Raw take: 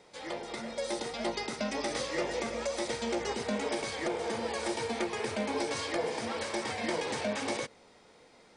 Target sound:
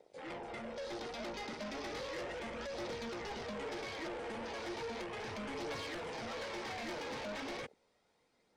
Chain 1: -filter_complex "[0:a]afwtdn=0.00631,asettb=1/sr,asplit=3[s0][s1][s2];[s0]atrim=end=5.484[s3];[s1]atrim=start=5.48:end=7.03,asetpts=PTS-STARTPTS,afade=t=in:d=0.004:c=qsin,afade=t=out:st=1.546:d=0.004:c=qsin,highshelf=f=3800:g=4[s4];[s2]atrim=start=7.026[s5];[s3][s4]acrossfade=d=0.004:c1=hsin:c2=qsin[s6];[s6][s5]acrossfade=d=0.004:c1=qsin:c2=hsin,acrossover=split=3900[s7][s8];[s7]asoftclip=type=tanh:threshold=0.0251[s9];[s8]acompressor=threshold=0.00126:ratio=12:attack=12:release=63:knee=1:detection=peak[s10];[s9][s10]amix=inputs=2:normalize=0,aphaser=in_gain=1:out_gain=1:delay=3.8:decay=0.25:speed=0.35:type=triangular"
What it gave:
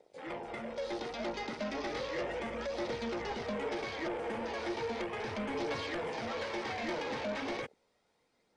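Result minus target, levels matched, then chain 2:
saturation: distortion -6 dB
-filter_complex "[0:a]afwtdn=0.00631,asettb=1/sr,asplit=3[s0][s1][s2];[s0]atrim=end=5.484[s3];[s1]atrim=start=5.48:end=7.03,asetpts=PTS-STARTPTS,afade=t=in:d=0.004:c=qsin,afade=t=out:st=1.546:d=0.004:c=qsin,highshelf=f=3800:g=4[s4];[s2]atrim=start=7.026[s5];[s3][s4]acrossfade=d=0.004:c1=hsin:c2=qsin[s6];[s6][s5]acrossfade=d=0.004:c1=qsin:c2=hsin,acrossover=split=3900[s7][s8];[s7]asoftclip=type=tanh:threshold=0.00944[s9];[s8]acompressor=threshold=0.00126:ratio=12:attack=12:release=63:knee=1:detection=peak[s10];[s9][s10]amix=inputs=2:normalize=0,aphaser=in_gain=1:out_gain=1:delay=3.8:decay=0.25:speed=0.35:type=triangular"

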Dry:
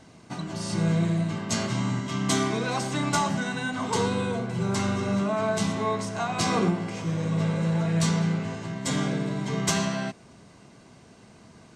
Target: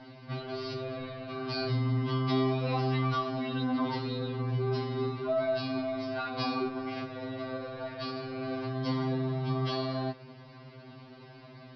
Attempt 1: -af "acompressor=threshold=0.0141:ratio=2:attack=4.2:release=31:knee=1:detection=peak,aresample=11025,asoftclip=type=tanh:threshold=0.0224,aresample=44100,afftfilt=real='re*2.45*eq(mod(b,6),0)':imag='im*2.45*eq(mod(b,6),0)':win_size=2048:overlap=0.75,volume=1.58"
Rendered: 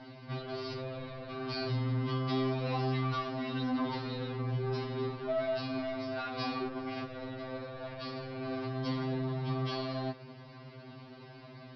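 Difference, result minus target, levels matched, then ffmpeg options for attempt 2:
saturation: distortion +15 dB
-af "acompressor=threshold=0.0141:ratio=2:attack=4.2:release=31:knee=1:detection=peak,aresample=11025,asoftclip=type=tanh:threshold=0.075,aresample=44100,afftfilt=real='re*2.45*eq(mod(b,6),0)':imag='im*2.45*eq(mod(b,6),0)':win_size=2048:overlap=0.75,volume=1.58"

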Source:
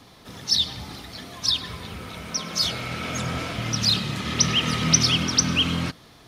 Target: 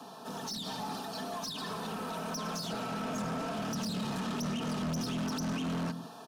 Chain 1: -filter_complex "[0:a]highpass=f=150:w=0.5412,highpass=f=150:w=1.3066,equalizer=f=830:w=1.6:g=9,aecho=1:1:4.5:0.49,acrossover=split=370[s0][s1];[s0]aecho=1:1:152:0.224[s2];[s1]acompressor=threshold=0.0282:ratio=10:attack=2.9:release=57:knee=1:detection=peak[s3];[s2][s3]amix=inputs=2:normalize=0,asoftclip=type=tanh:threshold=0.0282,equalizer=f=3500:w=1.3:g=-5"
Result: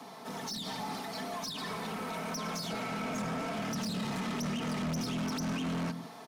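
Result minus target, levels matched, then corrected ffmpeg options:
2 kHz band +2.5 dB
-filter_complex "[0:a]highpass=f=150:w=0.5412,highpass=f=150:w=1.3066,equalizer=f=830:w=1.6:g=9,aecho=1:1:4.5:0.49,acrossover=split=370[s0][s1];[s0]aecho=1:1:152:0.224[s2];[s1]acompressor=threshold=0.0282:ratio=10:attack=2.9:release=57:knee=1:detection=peak,asuperstop=centerf=2100:order=4:qfactor=3.2[s3];[s2][s3]amix=inputs=2:normalize=0,asoftclip=type=tanh:threshold=0.0282,equalizer=f=3500:w=1.3:g=-5"

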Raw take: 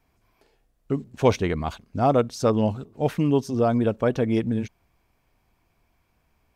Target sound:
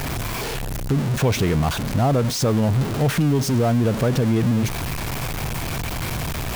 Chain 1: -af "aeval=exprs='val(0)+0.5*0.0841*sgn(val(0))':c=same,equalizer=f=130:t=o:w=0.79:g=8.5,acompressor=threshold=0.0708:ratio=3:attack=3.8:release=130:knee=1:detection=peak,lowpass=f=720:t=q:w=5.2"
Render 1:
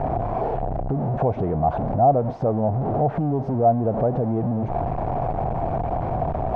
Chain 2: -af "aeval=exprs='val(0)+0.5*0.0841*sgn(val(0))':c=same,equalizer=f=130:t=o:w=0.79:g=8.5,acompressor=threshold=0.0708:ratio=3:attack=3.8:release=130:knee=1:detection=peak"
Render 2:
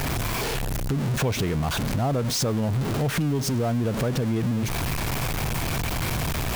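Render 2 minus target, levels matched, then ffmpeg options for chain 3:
compression: peak gain reduction +5.5 dB
-af "aeval=exprs='val(0)+0.5*0.0841*sgn(val(0))':c=same,equalizer=f=130:t=o:w=0.79:g=8.5,acompressor=threshold=0.188:ratio=3:attack=3.8:release=130:knee=1:detection=peak"

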